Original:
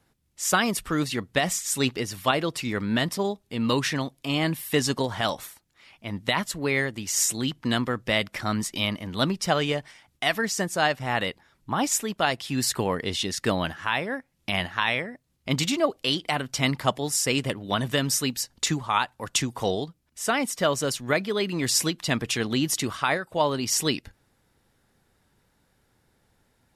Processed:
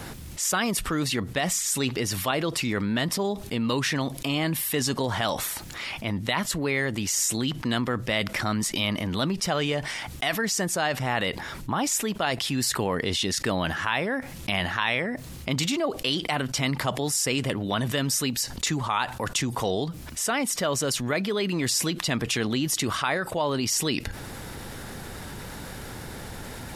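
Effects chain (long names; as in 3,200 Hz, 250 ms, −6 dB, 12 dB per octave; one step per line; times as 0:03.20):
envelope flattener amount 70%
level −5.5 dB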